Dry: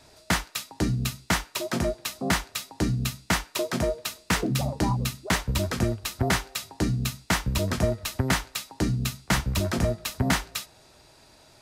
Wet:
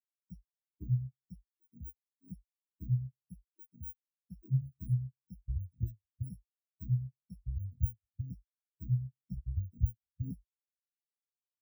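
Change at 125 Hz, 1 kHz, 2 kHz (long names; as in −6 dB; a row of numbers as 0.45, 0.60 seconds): −6.5 dB, below −40 dB, below −40 dB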